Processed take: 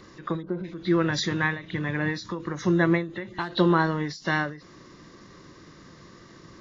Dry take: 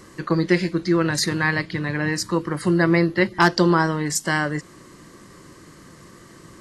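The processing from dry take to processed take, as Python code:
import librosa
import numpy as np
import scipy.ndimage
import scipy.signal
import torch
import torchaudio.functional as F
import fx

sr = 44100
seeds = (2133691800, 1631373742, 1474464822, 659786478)

y = fx.freq_compress(x, sr, knee_hz=2600.0, ratio=1.5)
y = fx.spec_box(y, sr, start_s=0.42, length_s=0.22, low_hz=1600.0, high_hz=8500.0, gain_db=-27)
y = fx.end_taper(y, sr, db_per_s=120.0)
y = y * 10.0 ** (-3.0 / 20.0)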